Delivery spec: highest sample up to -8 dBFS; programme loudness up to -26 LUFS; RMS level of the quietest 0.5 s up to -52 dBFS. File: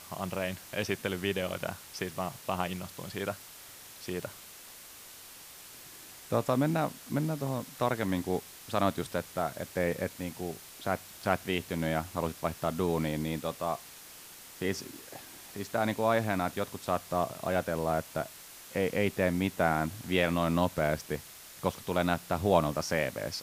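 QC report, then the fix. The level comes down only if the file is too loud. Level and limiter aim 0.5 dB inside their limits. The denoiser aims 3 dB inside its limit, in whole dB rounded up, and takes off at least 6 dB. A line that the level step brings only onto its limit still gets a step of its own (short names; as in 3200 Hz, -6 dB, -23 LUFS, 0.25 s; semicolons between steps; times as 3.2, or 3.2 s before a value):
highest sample -9.0 dBFS: OK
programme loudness -32.0 LUFS: OK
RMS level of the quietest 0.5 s -50 dBFS: fail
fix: denoiser 6 dB, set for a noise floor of -50 dBFS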